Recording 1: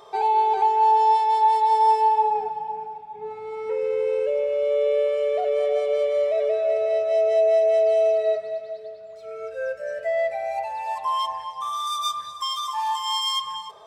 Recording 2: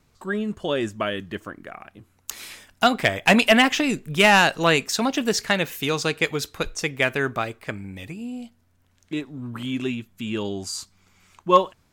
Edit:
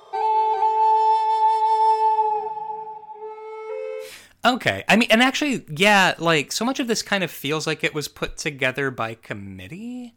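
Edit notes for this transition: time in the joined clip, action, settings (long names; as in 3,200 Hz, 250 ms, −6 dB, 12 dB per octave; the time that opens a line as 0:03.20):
recording 1
0:03.11–0:04.12: high-pass filter 280 Hz → 770 Hz
0:04.05: continue with recording 2 from 0:02.43, crossfade 0.14 s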